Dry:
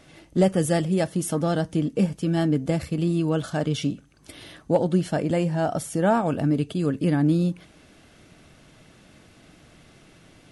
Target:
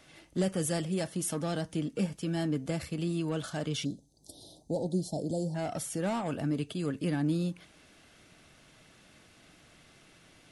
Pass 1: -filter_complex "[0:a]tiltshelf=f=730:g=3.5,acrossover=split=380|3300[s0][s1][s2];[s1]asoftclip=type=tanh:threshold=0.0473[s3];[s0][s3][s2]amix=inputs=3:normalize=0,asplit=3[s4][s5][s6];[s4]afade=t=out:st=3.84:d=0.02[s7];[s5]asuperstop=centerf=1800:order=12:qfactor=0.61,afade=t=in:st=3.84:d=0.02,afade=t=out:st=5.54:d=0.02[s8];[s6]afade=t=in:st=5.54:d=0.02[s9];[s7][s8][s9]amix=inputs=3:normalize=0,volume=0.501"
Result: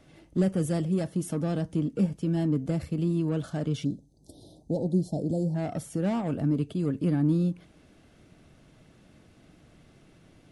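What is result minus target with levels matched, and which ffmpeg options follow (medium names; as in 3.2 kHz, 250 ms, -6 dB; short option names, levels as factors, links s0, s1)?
1 kHz band -5.5 dB
-filter_complex "[0:a]tiltshelf=f=730:g=-3.5,acrossover=split=380|3300[s0][s1][s2];[s1]asoftclip=type=tanh:threshold=0.0473[s3];[s0][s3][s2]amix=inputs=3:normalize=0,asplit=3[s4][s5][s6];[s4]afade=t=out:st=3.84:d=0.02[s7];[s5]asuperstop=centerf=1800:order=12:qfactor=0.61,afade=t=in:st=3.84:d=0.02,afade=t=out:st=5.54:d=0.02[s8];[s6]afade=t=in:st=5.54:d=0.02[s9];[s7][s8][s9]amix=inputs=3:normalize=0,volume=0.501"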